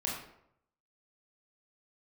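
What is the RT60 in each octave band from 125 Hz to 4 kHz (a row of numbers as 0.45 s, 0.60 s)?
0.90 s, 0.75 s, 0.75 s, 0.70 s, 0.60 s, 0.45 s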